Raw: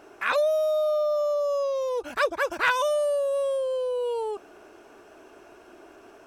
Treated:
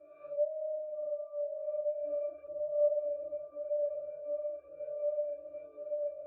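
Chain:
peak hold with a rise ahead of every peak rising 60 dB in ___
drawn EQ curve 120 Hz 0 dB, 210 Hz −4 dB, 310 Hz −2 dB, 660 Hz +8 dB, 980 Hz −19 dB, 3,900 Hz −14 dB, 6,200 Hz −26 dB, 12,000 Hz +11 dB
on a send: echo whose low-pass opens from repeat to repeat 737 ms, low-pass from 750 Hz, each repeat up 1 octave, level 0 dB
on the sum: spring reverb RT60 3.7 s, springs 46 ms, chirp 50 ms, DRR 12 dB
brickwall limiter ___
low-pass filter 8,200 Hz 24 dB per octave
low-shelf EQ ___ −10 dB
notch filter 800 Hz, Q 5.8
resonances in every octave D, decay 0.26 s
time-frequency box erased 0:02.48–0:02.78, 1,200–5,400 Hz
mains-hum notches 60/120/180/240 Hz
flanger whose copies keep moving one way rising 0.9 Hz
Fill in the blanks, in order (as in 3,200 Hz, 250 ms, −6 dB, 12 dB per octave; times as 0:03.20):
0.94 s, −15.5 dBFS, 150 Hz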